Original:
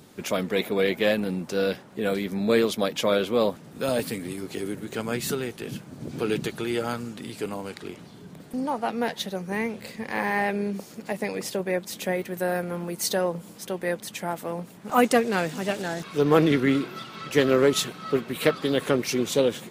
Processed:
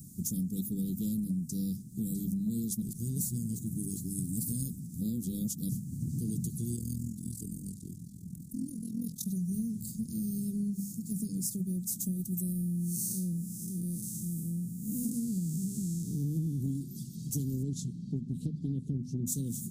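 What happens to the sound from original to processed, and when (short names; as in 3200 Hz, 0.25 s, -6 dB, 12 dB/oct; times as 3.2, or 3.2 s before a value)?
2.82–5.69 reverse
6.76–9.26 AM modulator 42 Hz, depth 70%
12.52–16.61 time blur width 0.199 s
17.62–19.26 LPF 3800 Hz -> 1600 Hz
whole clip: inverse Chebyshev band-stop 760–2000 Hz, stop band 80 dB; notches 50/100/150/200/250 Hz; compressor 6:1, threshold -38 dBFS; gain +8 dB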